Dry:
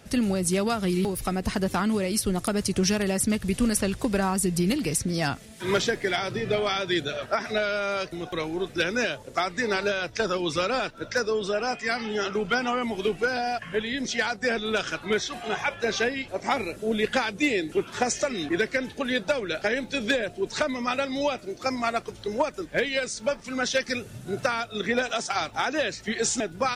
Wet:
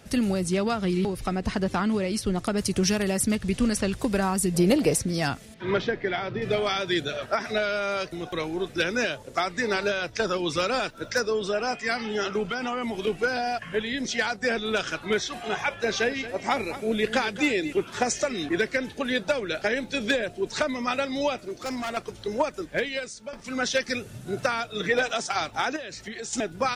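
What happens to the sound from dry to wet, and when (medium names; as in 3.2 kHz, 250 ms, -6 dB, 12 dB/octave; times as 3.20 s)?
0.43–2.58 s: distance through air 61 m
3.35–3.93 s: low-pass 7.9 kHz
4.54–5.01 s: peaking EQ 600 Hz +13 dB 1.4 oct
5.54–6.42 s: distance through air 270 m
10.59–11.21 s: treble shelf 8.2 kHz +9 dB
12.45–13.07 s: compression, threshold -25 dBFS
15.75–17.73 s: delay 227 ms -13.5 dB
21.40–21.97 s: hard clipper -28 dBFS
22.64–23.33 s: fade out, to -13.5 dB
24.64–25.08 s: comb 6.5 ms
25.76–26.33 s: compression, threshold -33 dBFS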